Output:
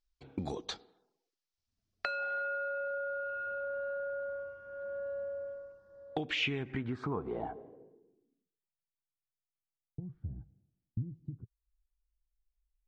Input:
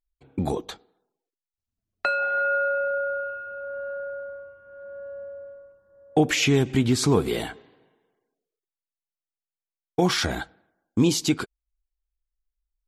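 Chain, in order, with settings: compression 6:1, threshold -35 dBFS, peak gain reduction 19.5 dB; low-pass sweep 5.3 kHz -> 120 Hz, 5.93–8.97 s

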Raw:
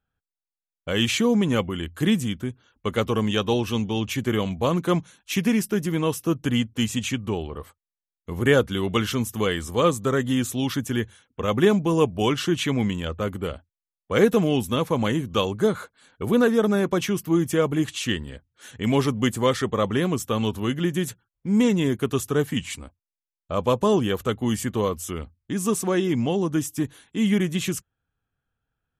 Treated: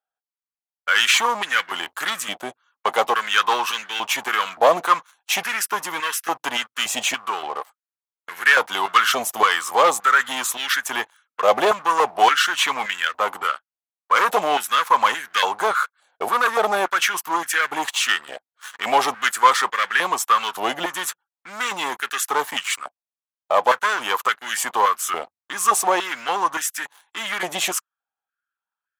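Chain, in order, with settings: waveshaping leveller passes 3; step-sequenced high-pass 3.5 Hz 700–1600 Hz; trim -3 dB

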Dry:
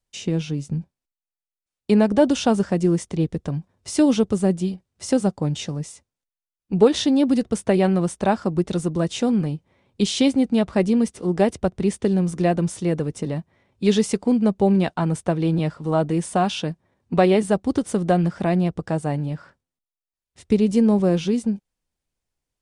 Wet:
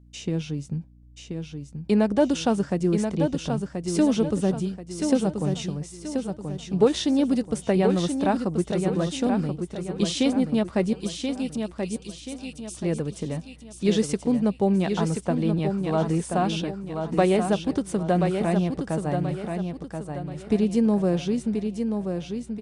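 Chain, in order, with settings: 10.93–12.77 s: steep high-pass 2.4 kHz 96 dB/octave; hum 60 Hz, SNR 26 dB; on a send: feedback delay 1031 ms, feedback 39%, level -6 dB; on the sum: trim -4 dB

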